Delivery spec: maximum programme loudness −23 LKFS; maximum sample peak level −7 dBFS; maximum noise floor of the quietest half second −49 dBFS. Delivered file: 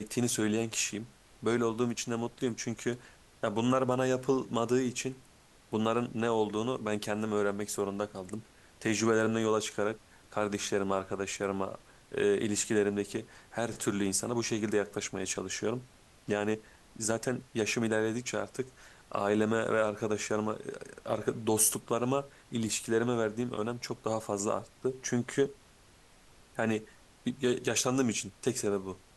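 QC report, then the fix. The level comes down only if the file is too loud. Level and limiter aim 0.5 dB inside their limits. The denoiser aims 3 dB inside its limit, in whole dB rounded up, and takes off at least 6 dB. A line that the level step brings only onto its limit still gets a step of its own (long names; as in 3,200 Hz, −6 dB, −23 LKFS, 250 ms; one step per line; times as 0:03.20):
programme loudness −32.0 LKFS: in spec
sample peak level −13.0 dBFS: in spec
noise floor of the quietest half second −60 dBFS: in spec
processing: no processing needed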